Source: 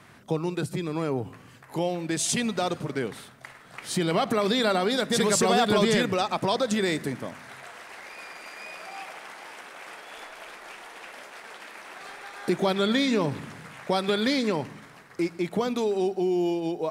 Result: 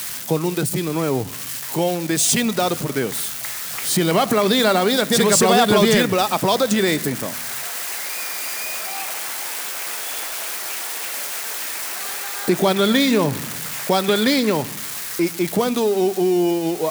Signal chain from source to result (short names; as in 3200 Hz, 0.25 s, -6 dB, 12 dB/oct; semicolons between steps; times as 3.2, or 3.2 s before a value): switching spikes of -25.5 dBFS; gain +7 dB